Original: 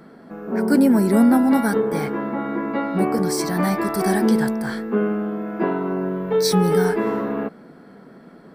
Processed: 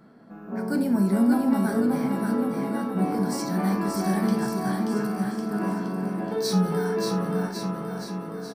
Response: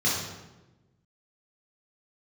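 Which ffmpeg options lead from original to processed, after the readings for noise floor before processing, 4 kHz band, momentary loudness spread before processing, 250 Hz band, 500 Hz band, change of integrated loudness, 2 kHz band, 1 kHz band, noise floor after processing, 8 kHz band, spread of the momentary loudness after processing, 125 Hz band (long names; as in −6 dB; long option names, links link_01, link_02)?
−46 dBFS, −5.0 dB, 10 LU, −4.5 dB, −7.5 dB, −5.5 dB, −7.0 dB, −5.0 dB, −42 dBFS, −6.0 dB, 9 LU, −2.0 dB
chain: -filter_complex "[0:a]aecho=1:1:580|1102|1572|1995|2375:0.631|0.398|0.251|0.158|0.1,asplit=2[link_01][link_02];[1:a]atrim=start_sample=2205,afade=type=out:start_time=0.14:duration=0.01,atrim=end_sample=6615[link_03];[link_02][link_03]afir=irnorm=-1:irlink=0,volume=-16.5dB[link_04];[link_01][link_04]amix=inputs=2:normalize=0,volume=-8.5dB"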